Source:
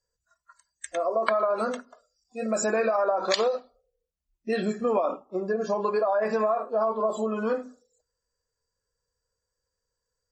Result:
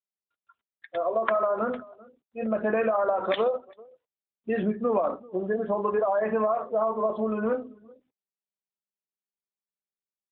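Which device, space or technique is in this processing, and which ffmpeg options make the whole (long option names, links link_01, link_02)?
mobile call with aggressive noise cancelling: -filter_complex "[0:a]asplit=3[link_01][link_02][link_03];[link_01]afade=type=out:start_time=5.57:duration=0.02[link_04];[link_02]highpass=frequency=130:width=0.5412,highpass=frequency=130:width=1.3066,afade=type=in:start_time=5.57:duration=0.02,afade=type=out:start_time=6.71:duration=0.02[link_05];[link_03]afade=type=in:start_time=6.71:duration=0.02[link_06];[link_04][link_05][link_06]amix=inputs=3:normalize=0,adynamicequalizer=threshold=0.00891:dfrequency=180:dqfactor=1.7:tfrequency=180:tqfactor=1.7:attack=5:release=100:ratio=0.375:range=2:mode=boostabove:tftype=bell,highpass=160,aecho=1:1:389:0.0891,afftdn=noise_reduction=35:noise_floor=-43" -ar 8000 -c:a libopencore_amrnb -b:a 12200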